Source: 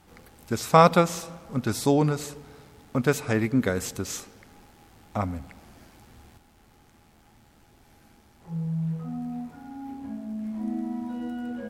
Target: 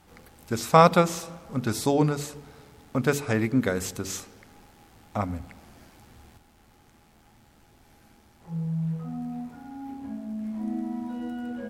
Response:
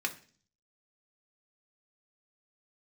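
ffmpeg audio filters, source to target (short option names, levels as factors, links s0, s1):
-af "bandreject=f=47.62:t=h:w=4,bandreject=f=95.24:t=h:w=4,bandreject=f=142.86:t=h:w=4,bandreject=f=190.48:t=h:w=4,bandreject=f=238.1:t=h:w=4,bandreject=f=285.72:t=h:w=4,bandreject=f=333.34:t=h:w=4,bandreject=f=380.96:t=h:w=4,bandreject=f=428.58:t=h:w=4"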